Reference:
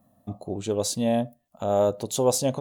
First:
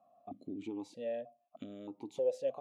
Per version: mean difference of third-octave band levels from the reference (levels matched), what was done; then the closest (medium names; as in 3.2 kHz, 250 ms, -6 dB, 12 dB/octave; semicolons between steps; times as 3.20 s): 8.0 dB: compression 3:1, threshold -34 dBFS, peak gain reduction 13.5 dB; stepped vowel filter 3.2 Hz; trim +5.5 dB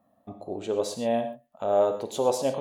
4.5 dB: tone controls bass -12 dB, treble -12 dB; gated-style reverb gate 150 ms flat, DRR 7 dB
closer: second